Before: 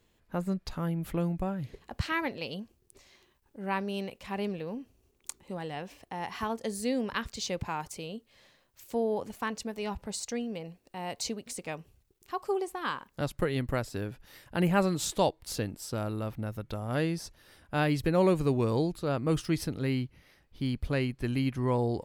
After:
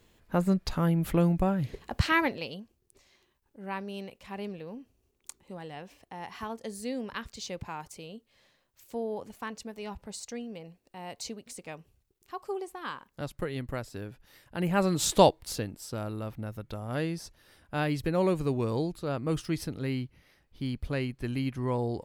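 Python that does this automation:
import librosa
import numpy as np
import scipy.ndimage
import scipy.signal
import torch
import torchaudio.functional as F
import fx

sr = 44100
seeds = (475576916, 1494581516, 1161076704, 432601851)

y = fx.gain(x, sr, db=fx.line((2.2, 6.0), (2.62, -4.5), (14.57, -4.5), (15.2, 7.5), (15.66, -2.0)))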